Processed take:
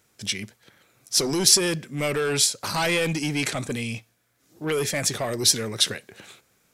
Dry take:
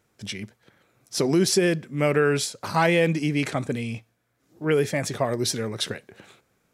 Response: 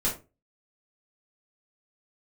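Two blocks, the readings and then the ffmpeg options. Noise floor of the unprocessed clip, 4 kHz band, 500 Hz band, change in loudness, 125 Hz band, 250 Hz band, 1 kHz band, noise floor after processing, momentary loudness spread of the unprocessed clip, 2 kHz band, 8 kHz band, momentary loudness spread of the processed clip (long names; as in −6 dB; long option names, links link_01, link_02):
−70 dBFS, +7.5 dB, −4.0 dB, +1.5 dB, −3.5 dB, −4.0 dB, −3.5 dB, −67 dBFS, 15 LU, −0.5 dB, +9.0 dB, 13 LU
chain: -filter_complex "[0:a]highshelf=frequency=2300:gain=10,acrossover=split=2800[link_01][link_02];[link_01]asoftclip=type=tanh:threshold=-21dB[link_03];[link_03][link_02]amix=inputs=2:normalize=0"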